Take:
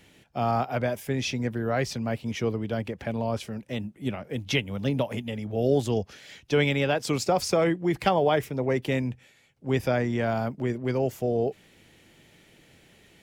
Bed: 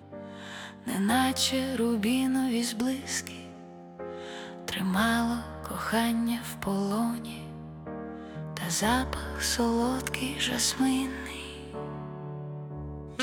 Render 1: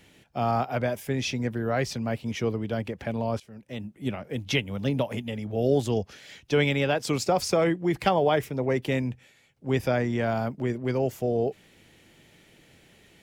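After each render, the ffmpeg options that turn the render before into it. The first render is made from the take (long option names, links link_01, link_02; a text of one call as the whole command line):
ffmpeg -i in.wav -filter_complex "[0:a]asplit=2[link_01][link_02];[link_01]atrim=end=3.4,asetpts=PTS-STARTPTS,afade=type=out:start_time=3.396:duration=0.004:curve=hsin:silence=0.125893[link_03];[link_02]atrim=start=3.4,asetpts=PTS-STARTPTS,afade=type=in:duration=0.64:silence=0.125893[link_04];[link_03][link_04]concat=n=2:v=0:a=1" out.wav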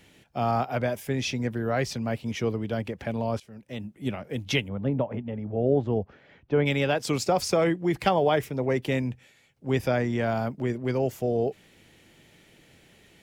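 ffmpeg -i in.wav -filter_complex "[0:a]asplit=3[link_01][link_02][link_03];[link_01]afade=type=out:start_time=4.67:duration=0.02[link_04];[link_02]lowpass=1300,afade=type=in:start_time=4.67:duration=0.02,afade=type=out:start_time=6.65:duration=0.02[link_05];[link_03]afade=type=in:start_time=6.65:duration=0.02[link_06];[link_04][link_05][link_06]amix=inputs=3:normalize=0" out.wav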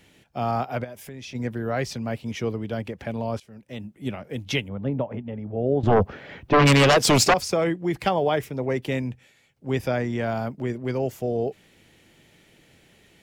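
ffmpeg -i in.wav -filter_complex "[0:a]asplit=3[link_01][link_02][link_03];[link_01]afade=type=out:start_time=0.83:duration=0.02[link_04];[link_02]acompressor=threshold=-37dB:ratio=4:attack=3.2:release=140:knee=1:detection=peak,afade=type=in:start_time=0.83:duration=0.02,afade=type=out:start_time=1.34:duration=0.02[link_05];[link_03]afade=type=in:start_time=1.34:duration=0.02[link_06];[link_04][link_05][link_06]amix=inputs=3:normalize=0,asettb=1/sr,asplit=3[link_07][link_08][link_09];[link_07]atrim=end=5.834[link_10];[link_08]atrim=start=5.83:end=7.34,asetpts=PTS-STARTPTS,afade=type=in:duration=0.004:curve=qsin,afade=type=out:start_time=1.506:duration=0.004:curve=qsin,aeval=exprs='0.251*sin(PI/2*3.16*val(0)/0.251)':channel_layout=same[link_11];[link_09]atrim=start=7.336[link_12];[link_10][link_11]acrossfade=duration=0.004:curve1=hsin:curve2=qsin[link_13];[link_13][link_12]acrossfade=duration=0.004:curve1=qsin:curve2=hsin" out.wav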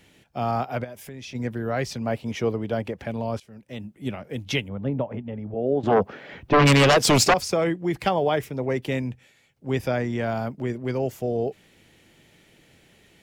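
ffmpeg -i in.wav -filter_complex "[0:a]asettb=1/sr,asplit=3[link_01][link_02][link_03];[link_01]atrim=end=2.014[link_04];[link_02]atrim=start=2.01:end=3,asetpts=PTS-STARTPTS,afade=type=in:duration=0.004:curve=qsin,afade=type=out:start_time=0.986:duration=0.004:curve=qsin,equalizer=frequency=680:width=0.67:gain=5[link_05];[link_03]atrim=start=2.996[link_06];[link_04][link_05]acrossfade=duration=0.004:curve1=hsin:curve2=qsin[link_07];[link_07][link_06]acrossfade=duration=0.004:curve1=qsin:curve2=hsin,asettb=1/sr,asplit=3[link_08][link_09][link_10];[link_08]atrim=end=5.544[link_11];[link_09]atrim=start=5.54:end=6.33,asetpts=PTS-STARTPTS,afade=type=in:duration=0.004:curve=qsin,afade=type=out:start_time=0.786:duration=0.004:curve=qsin,highpass=180[link_12];[link_10]atrim=start=6.326[link_13];[link_11][link_12]acrossfade=duration=0.004:curve1=hsin:curve2=qsin[link_14];[link_14][link_13]acrossfade=duration=0.004:curve1=qsin:curve2=hsin" out.wav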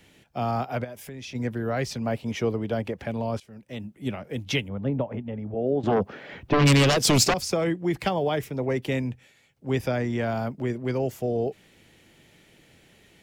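ffmpeg -i in.wav -filter_complex "[0:a]acrossover=split=350|3000[link_01][link_02][link_03];[link_02]acompressor=threshold=-26dB:ratio=2.5[link_04];[link_01][link_04][link_03]amix=inputs=3:normalize=0" out.wav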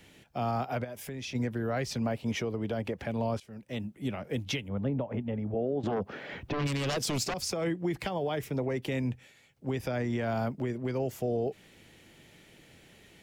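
ffmpeg -i in.wav -af "acompressor=threshold=-24dB:ratio=4,alimiter=limit=-22dB:level=0:latency=1:release=195" out.wav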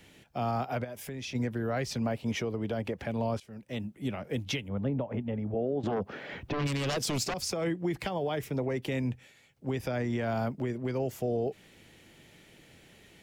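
ffmpeg -i in.wav -af anull out.wav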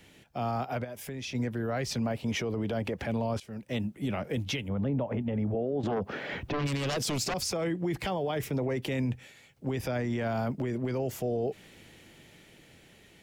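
ffmpeg -i in.wav -af "dynaudnorm=framelen=420:gausssize=9:maxgain=5dB,alimiter=limit=-23dB:level=0:latency=1:release=19" out.wav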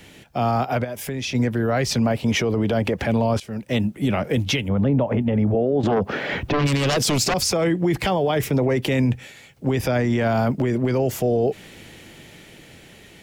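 ffmpeg -i in.wav -af "volume=10.5dB" out.wav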